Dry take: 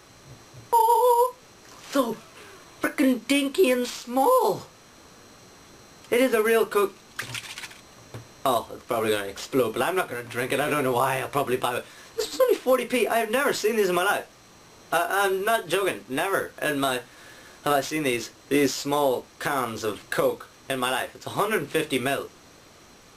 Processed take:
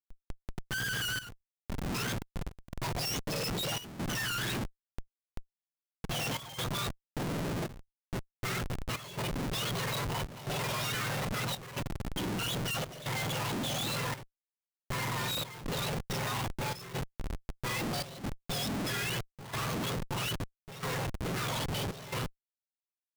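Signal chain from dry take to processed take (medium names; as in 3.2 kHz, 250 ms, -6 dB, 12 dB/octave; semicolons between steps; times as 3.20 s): spectrum inverted on a logarithmic axis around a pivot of 1.2 kHz; Schmitt trigger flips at -36.5 dBFS; trance gate ".xxxxxxxxxx." 139 bpm -12 dB; trim -5.5 dB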